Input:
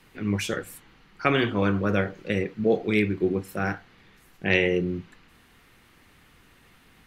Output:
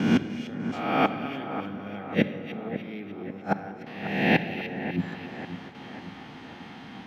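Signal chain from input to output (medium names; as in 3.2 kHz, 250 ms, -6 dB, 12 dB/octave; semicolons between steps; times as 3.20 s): reverse spectral sustain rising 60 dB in 1.08 s; careless resampling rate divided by 3×, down filtered, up zero stuff; peaking EQ 710 Hz +8.5 dB 0.34 oct; inverted gate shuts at -9 dBFS, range -28 dB; low-pass 5.9 kHz 24 dB/octave; treble shelf 3.1 kHz -2.5 dB; small resonant body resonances 230/850/3200 Hz, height 11 dB, ringing for 40 ms; gate with hold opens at -42 dBFS; high-pass 110 Hz 12 dB/octave; two-band feedback delay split 2 kHz, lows 542 ms, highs 299 ms, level -10.5 dB; on a send at -10 dB: reverberation RT60 1.6 s, pre-delay 6 ms; on the sum: trim +7 dB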